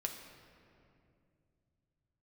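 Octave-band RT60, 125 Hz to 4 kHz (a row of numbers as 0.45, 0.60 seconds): can't be measured, 3.5 s, 2.8 s, 2.2 s, 2.1 s, 1.6 s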